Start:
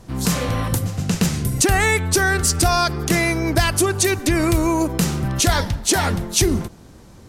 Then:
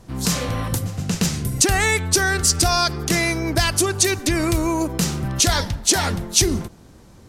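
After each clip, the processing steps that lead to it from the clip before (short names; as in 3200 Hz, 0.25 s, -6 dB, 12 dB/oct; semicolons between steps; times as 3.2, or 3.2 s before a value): dynamic EQ 5300 Hz, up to +6 dB, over -32 dBFS, Q 0.79; gain -2.5 dB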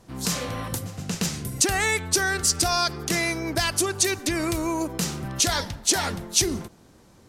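low shelf 130 Hz -8.5 dB; gain -4 dB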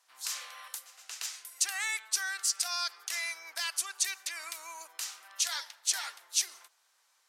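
Bessel high-pass 1400 Hz, order 4; gain -7.5 dB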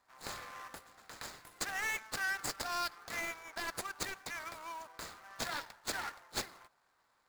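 median filter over 15 samples; gain +3.5 dB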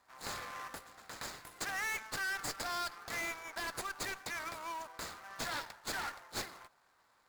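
tube stage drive 38 dB, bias 0.3; gain +4.5 dB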